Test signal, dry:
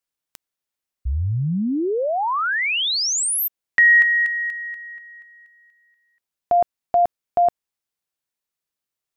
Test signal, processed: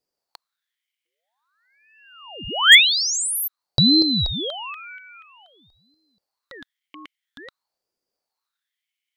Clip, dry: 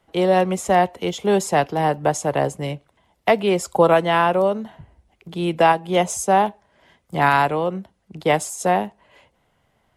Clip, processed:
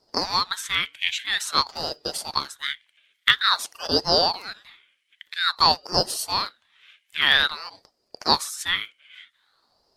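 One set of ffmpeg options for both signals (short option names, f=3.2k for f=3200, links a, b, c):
-af "highpass=f=2.6k:t=q:w=11,asoftclip=type=hard:threshold=-1dB,aeval=exprs='val(0)*sin(2*PI*1300*n/s+1300*0.7/0.5*sin(2*PI*0.5*n/s))':c=same"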